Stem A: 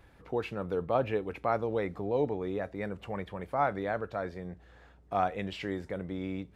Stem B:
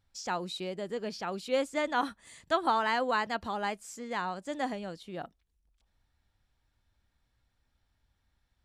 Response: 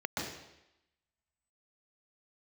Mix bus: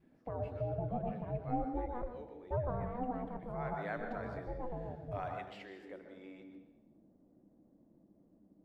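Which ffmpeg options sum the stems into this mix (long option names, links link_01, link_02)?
-filter_complex "[0:a]highpass=320,volume=-7.5dB,afade=type=in:start_time=3.4:duration=0.44:silence=0.237137,afade=type=out:start_time=4.99:duration=0.49:silence=0.398107,asplit=2[link_01][link_02];[link_02]volume=-8dB[link_03];[1:a]acompressor=mode=upward:threshold=-47dB:ratio=2.5,lowpass=frequency=390:width_type=q:width=3.5,aeval=exprs='val(0)*sin(2*PI*250*n/s)':channel_layout=same,volume=-4dB,asplit=3[link_04][link_05][link_06];[link_05]volume=-12.5dB[link_07];[link_06]apad=whole_len=288996[link_08];[link_01][link_08]sidechaincompress=threshold=-43dB:ratio=8:attack=16:release=186[link_09];[2:a]atrim=start_sample=2205[link_10];[link_03][link_07]amix=inputs=2:normalize=0[link_11];[link_11][link_10]afir=irnorm=-1:irlink=0[link_12];[link_09][link_04][link_12]amix=inputs=3:normalize=0,adynamicequalizer=threshold=0.00282:dfrequency=540:dqfactor=1.2:tfrequency=540:tqfactor=1.2:attack=5:release=100:ratio=0.375:range=2.5:mode=cutabove:tftype=bell"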